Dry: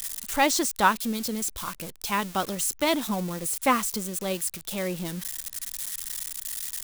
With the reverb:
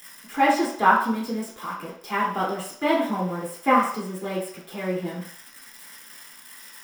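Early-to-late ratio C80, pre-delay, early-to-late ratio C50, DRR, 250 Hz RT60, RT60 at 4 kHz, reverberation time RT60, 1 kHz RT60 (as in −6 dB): 8.0 dB, 3 ms, 4.0 dB, −7.5 dB, 0.45 s, 0.60 s, 0.60 s, 0.65 s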